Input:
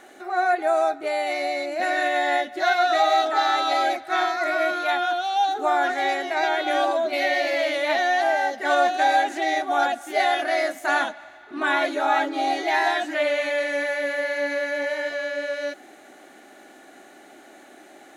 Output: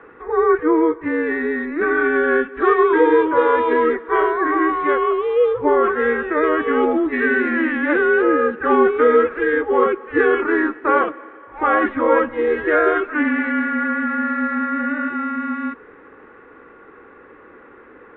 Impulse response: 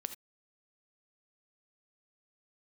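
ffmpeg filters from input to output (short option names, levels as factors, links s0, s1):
-af "highpass=370,highpass=f=560:t=q:w=0.5412,highpass=f=560:t=q:w=1.307,lowpass=f=2500:t=q:w=0.5176,lowpass=f=2500:t=q:w=0.7071,lowpass=f=2500:t=q:w=1.932,afreqshift=-320,volume=2.11"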